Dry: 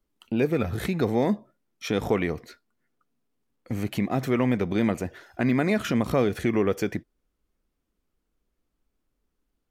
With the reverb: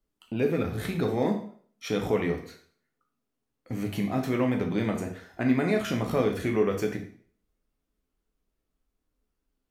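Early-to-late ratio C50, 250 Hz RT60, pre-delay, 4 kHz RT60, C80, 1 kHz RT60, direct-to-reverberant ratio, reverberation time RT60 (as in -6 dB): 8.5 dB, 0.45 s, 5 ms, 0.50 s, 12.5 dB, 0.50 s, 2.0 dB, 0.50 s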